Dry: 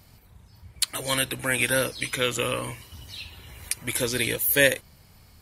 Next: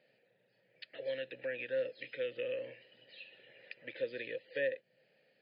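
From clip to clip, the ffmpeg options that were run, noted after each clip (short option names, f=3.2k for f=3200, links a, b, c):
-filter_complex "[0:a]afftfilt=real='re*between(b*sr/4096,110,5100)':imag='im*between(b*sr/4096,110,5100)':win_size=4096:overlap=0.75,acrossover=split=270[a][b];[b]acompressor=threshold=-35dB:ratio=2.5[c];[a][c]amix=inputs=2:normalize=0,asplit=3[d][e][f];[d]bandpass=f=530:t=q:w=8,volume=0dB[g];[e]bandpass=f=1.84k:t=q:w=8,volume=-6dB[h];[f]bandpass=f=2.48k:t=q:w=8,volume=-9dB[i];[g][h][i]amix=inputs=3:normalize=0,volume=2dB"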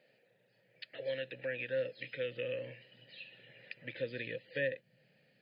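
-af "asubboost=boost=6.5:cutoff=170,volume=2dB"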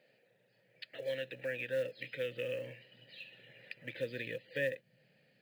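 -af "acrusher=bits=7:mode=log:mix=0:aa=0.000001"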